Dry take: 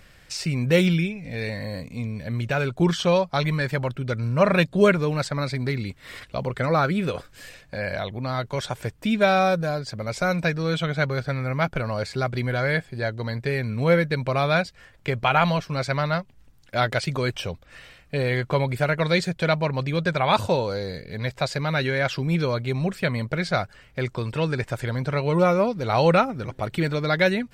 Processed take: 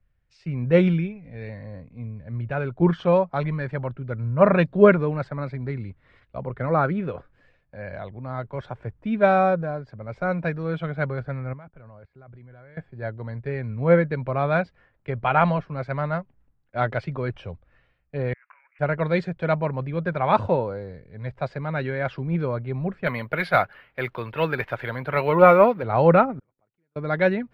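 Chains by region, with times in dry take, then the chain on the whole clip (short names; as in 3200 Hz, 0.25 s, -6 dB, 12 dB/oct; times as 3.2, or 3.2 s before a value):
11.53–12.77 LPF 4900 Hz + level quantiser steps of 18 dB
18.33–18.79 careless resampling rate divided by 8×, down none, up filtered + HPF 1500 Hz 24 dB/oct + negative-ratio compressor -45 dBFS
23.06–25.83 bell 3400 Hz +12.5 dB 2.4 oct + overdrive pedal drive 11 dB, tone 1300 Hz, clips at -1.5 dBFS + careless resampling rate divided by 3×, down none, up zero stuff
26.39–26.96 low shelf 240 Hz -6.5 dB + flipped gate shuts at -30 dBFS, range -32 dB + core saturation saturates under 760 Hz
whole clip: LPF 1600 Hz 12 dB/oct; three-band expander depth 70%; gain -1 dB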